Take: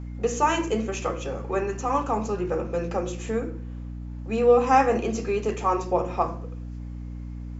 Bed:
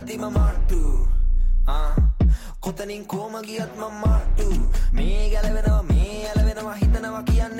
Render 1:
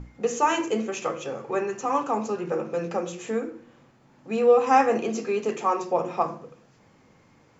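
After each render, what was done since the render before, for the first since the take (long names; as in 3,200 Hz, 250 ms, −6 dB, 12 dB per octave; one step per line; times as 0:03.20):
mains-hum notches 60/120/180/240/300/360 Hz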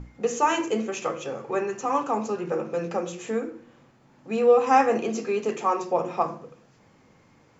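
no processing that can be heard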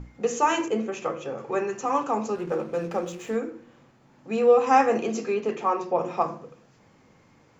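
0:00.68–0:01.38: high-shelf EQ 3,100 Hz −9 dB
0:02.35–0:03.36: slack as between gear wheels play −42.5 dBFS
0:05.34–0:06.01: high-frequency loss of the air 120 metres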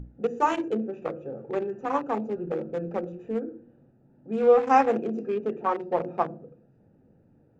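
adaptive Wiener filter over 41 samples
high-shelf EQ 4,500 Hz −9 dB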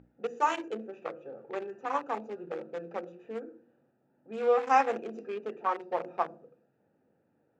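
low-pass that shuts in the quiet parts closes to 2,900 Hz, open at −22.5 dBFS
high-pass filter 1,000 Hz 6 dB per octave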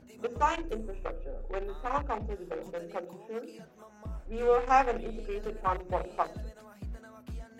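mix in bed −22 dB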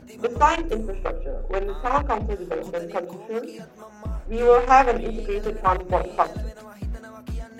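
level +9.5 dB
brickwall limiter −3 dBFS, peak gain reduction 1.5 dB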